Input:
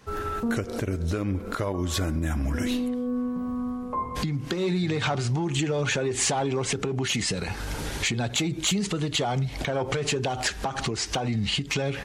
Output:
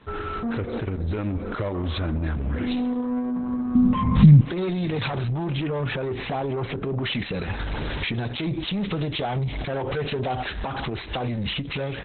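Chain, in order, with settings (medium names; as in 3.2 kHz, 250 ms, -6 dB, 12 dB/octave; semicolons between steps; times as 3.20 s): 5.67–7.06 s: tape spacing loss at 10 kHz 24 dB; peak limiter -21 dBFS, peak gain reduction 5 dB; saturation -28 dBFS, distortion -13 dB; 3.75–4.41 s: resonant low shelf 280 Hz +11 dB, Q 3; short-mantissa float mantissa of 6-bit; level rider gain up to 4 dB; trim +3.5 dB; Opus 8 kbps 48 kHz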